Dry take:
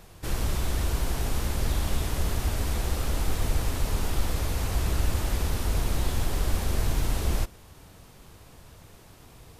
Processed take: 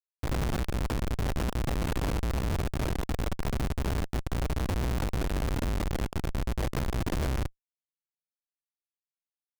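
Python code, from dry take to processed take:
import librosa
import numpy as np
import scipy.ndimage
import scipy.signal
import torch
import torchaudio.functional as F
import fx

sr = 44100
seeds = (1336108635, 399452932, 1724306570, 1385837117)

y = fx.chorus_voices(x, sr, voices=2, hz=0.26, base_ms=17, depth_ms=4.0, mix_pct=40)
y = fx.room_flutter(y, sr, wall_m=5.5, rt60_s=0.21)
y = fx.schmitt(y, sr, flips_db=-33.0)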